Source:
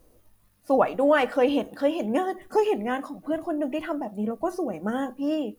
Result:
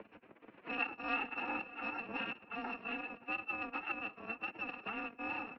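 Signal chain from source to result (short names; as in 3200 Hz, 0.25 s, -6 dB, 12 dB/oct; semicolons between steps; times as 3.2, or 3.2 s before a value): FFT order left unsorted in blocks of 256 samples; tilt -4 dB/oct; reverse; upward compressor, threshold -27 dBFS; reverse; power-law curve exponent 0.7; outdoor echo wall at 100 m, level -20 dB; formant-preserving pitch shift +5 st; mistuned SSB -85 Hz 340–2600 Hz; three-band squash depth 40%; gain -1 dB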